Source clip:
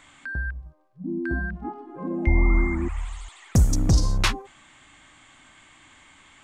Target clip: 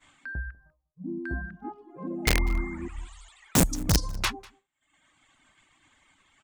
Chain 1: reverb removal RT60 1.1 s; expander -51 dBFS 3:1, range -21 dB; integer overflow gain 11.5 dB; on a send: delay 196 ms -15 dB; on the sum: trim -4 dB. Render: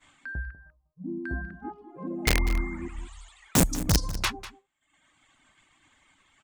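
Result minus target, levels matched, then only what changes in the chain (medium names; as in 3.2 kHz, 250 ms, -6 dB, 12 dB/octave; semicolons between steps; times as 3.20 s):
echo-to-direct +8.5 dB
change: delay 196 ms -23.5 dB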